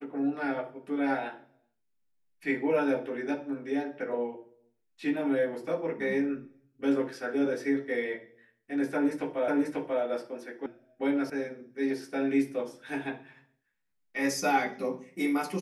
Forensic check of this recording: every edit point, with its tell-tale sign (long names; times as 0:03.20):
0:09.48: the same again, the last 0.54 s
0:10.66: cut off before it has died away
0:11.30: cut off before it has died away